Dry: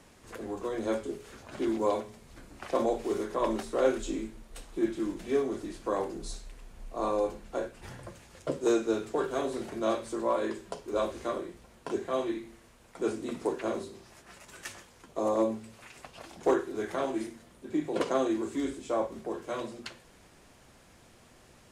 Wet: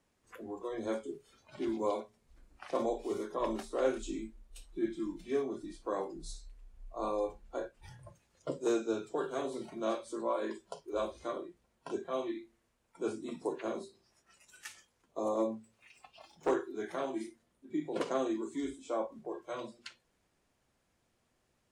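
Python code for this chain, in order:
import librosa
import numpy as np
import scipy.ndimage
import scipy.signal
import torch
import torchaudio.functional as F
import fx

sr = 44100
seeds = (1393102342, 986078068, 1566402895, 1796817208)

y = fx.self_delay(x, sr, depth_ms=0.23, at=(15.55, 16.49))
y = fx.noise_reduce_blind(y, sr, reduce_db=14)
y = y * librosa.db_to_amplitude(-5.0)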